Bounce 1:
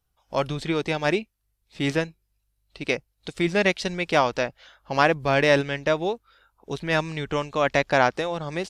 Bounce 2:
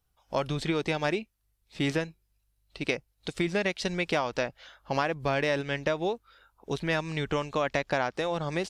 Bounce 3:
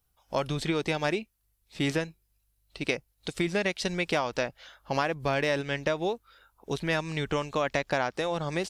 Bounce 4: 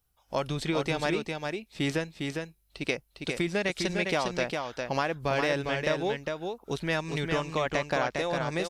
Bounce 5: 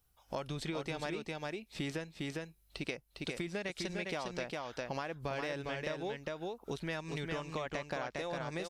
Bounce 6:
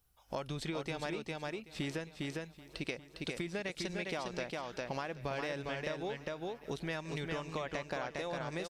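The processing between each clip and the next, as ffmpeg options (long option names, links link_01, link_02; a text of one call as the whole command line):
ffmpeg -i in.wav -af "acompressor=threshold=-24dB:ratio=6" out.wav
ffmpeg -i in.wav -af "highshelf=frequency=9300:gain=8.5" out.wav
ffmpeg -i in.wav -af "aecho=1:1:405:0.596,volume=-1dB" out.wav
ffmpeg -i in.wav -af "acompressor=threshold=-40dB:ratio=3,volume=1dB" out.wav
ffmpeg -i in.wav -af "aecho=1:1:782|1564|2346|3128:0.119|0.0559|0.0263|0.0123" out.wav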